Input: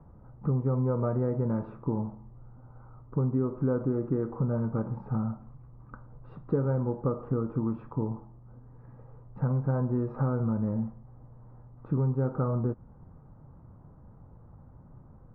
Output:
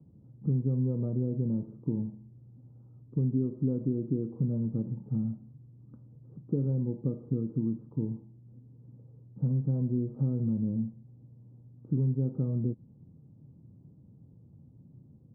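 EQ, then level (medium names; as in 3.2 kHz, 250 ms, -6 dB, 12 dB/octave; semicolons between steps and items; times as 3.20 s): Butterworth band-pass 190 Hz, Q 0.78; 0.0 dB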